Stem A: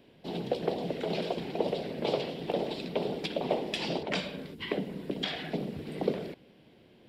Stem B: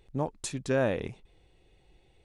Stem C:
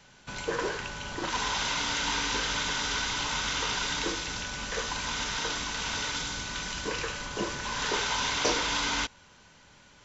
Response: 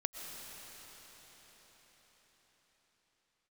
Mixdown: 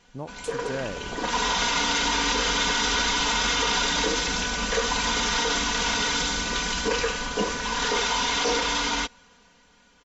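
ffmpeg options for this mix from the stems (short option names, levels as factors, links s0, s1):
-filter_complex "[0:a]equalizer=f=5400:t=o:w=1.1:g=-8.5,adelay=450,volume=0.299[s0];[1:a]volume=0.531[s1];[2:a]equalizer=f=500:t=o:w=1.4:g=3,aecho=1:1:4.2:0.85,dynaudnorm=f=180:g=13:m=3.98,volume=0.531[s2];[s0][s1][s2]amix=inputs=3:normalize=0,alimiter=limit=0.188:level=0:latency=1:release=23"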